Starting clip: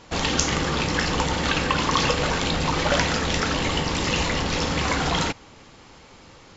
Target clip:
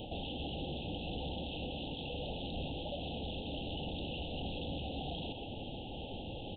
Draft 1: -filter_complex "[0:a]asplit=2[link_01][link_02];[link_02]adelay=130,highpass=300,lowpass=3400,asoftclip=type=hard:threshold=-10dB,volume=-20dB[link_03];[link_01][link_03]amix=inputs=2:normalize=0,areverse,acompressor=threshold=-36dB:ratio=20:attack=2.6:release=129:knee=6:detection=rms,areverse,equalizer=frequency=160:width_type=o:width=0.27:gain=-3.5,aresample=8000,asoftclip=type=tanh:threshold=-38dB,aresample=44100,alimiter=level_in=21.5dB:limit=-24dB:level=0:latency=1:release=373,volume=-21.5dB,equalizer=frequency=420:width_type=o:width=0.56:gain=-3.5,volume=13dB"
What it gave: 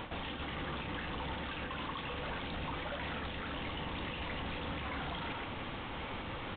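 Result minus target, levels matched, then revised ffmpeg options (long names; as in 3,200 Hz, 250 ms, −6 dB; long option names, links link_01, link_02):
2,000 Hz band +9.0 dB; downward compressor: peak gain reduction +7.5 dB
-filter_complex "[0:a]asplit=2[link_01][link_02];[link_02]adelay=130,highpass=300,lowpass=3400,asoftclip=type=hard:threshold=-10dB,volume=-20dB[link_03];[link_01][link_03]amix=inputs=2:normalize=0,areverse,acompressor=threshold=-28dB:ratio=20:attack=2.6:release=129:knee=6:detection=rms,areverse,equalizer=frequency=160:width_type=o:width=0.27:gain=-3.5,aresample=8000,asoftclip=type=tanh:threshold=-38dB,aresample=44100,alimiter=level_in=21.5dB:limit=-24dB:level=0:latency=1:release=373,volume=-21.5dB,asuperstop=centerf=1500:order=20:qfactor=0.81,equalizer=frequency=420:width_type=o:width=0.56:gain=-3.5,volume=13dB"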